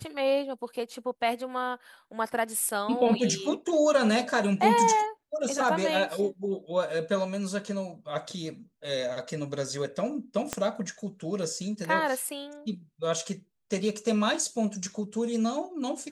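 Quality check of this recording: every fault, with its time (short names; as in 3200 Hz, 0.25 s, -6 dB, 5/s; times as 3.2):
10.53 pop -13 dBFS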